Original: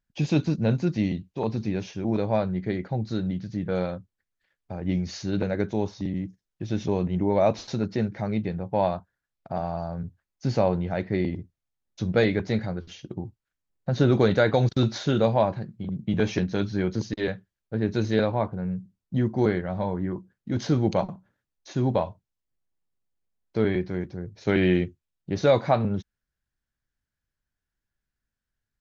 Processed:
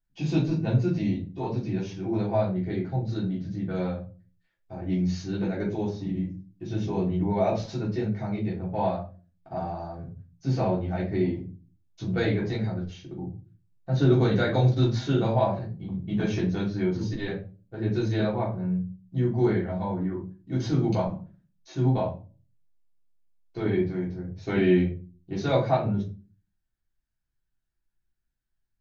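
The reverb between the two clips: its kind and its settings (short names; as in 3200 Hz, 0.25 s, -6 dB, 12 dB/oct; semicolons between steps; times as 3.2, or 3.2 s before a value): shoebox room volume 170 m³, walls furnished, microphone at 3.4 m; gain -10.5 dB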